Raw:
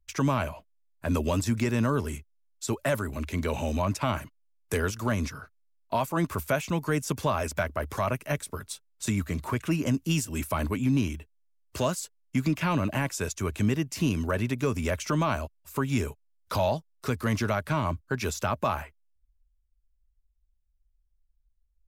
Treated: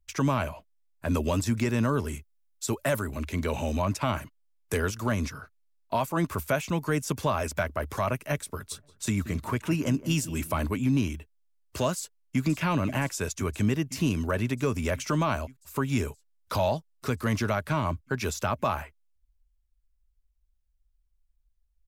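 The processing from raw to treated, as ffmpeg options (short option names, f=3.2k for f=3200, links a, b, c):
-filter_complex "[0:a]asettb=1/sr,asplit=3[a][b][c];[a]atrim=end=2.174[d];[b]atrim=start=2.17:end=3.05,asetpts=PTS-STARTPTS,afade=t=in:d=0.004:c=qsin,afade=t=out:st=0.876:d=0.004:c=qsin,highshelf=f=9.8k:g=6.5[e];[c]atrim=start=3.046[f];[d][e]acrossfade=d=0.004:c1=hsin:c2=qsin[g];[g][f]acrossfade=d=0.004:c1=qsin:c2=hsin,asplit=3[h][i][j];[h]afade=t=out:st=8.71:d=0.02[k];[i]asplit=2[l][m];[m]adelay=177,lowpass=f=1.5k:p=1,volume=-13.5dB,asplit=2[n][o];[o]adelay=177,lowpass=f=1.5k:p=1,volume=0.26,asplit=2[p][q];[q]adelay=177,lowpass=f=1.5k:p=1,volume=0.26[r];[l][n][p][r]amix=inputs=4:normalize=0,afade=t=in:st=8.71:d=0.02,afade=t=out:st=10.65:d=0.02[s];[j]afade=t=in:st=10.65:d=0.02[t];[k][s][t]amix=inputs=3:normalize=0,asplit=2[u][v];[v]afade=t=in:st=11.97:d=0.01,afade=t=out:st=12.44:d=0.01,aecho=0:1:520|1040|1560|2080|2600|3120|3640|4160|4680|5200|5720|6240:0.251189|0.188391|0.141294|0.10597|0.0794777|0.0596082|0.0447062|0.0335296|0.0251472|0.0188604|0.0141453|0.010609[w];[u][w]amix=inputs=2:normalize=0"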